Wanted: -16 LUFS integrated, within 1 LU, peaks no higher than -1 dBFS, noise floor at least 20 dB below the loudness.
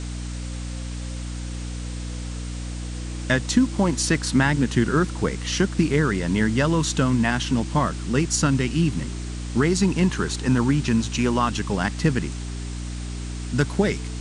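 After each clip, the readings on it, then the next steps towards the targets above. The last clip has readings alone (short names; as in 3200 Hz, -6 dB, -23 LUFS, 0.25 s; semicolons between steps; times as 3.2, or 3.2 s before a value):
hum 60 Hz; harmonics up to 300 Hz; hum level -29 dBFS; noise floor -31 dBFS; noise floor target -44 dBFS; loudness -23.5 LUFS; peak -6.5 dBFS; loudness target -16.0 LUFS
-> notches 60/120/180/240/300 Hz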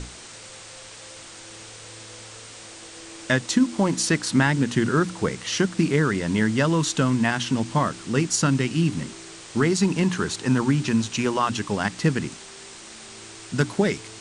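hum none; noise floor -42 dBFS; noise floor target -43 dBFS
-> denoiser 6 dB, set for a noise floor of -42 dBFS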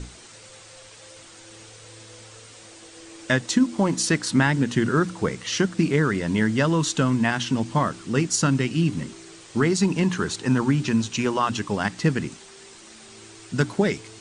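noise floor -46 dBFS; loudness -23.0 LUFS; peak -6.5 dBFS; loudness target -16.0 LUFS
-> gain +7 dB; limiter -1 dBFS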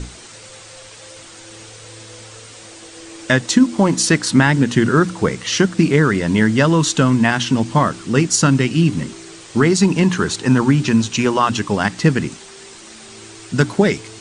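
loudness -16.0 LUFS; peak -1.0 dBFS; noise floor -39 dBFS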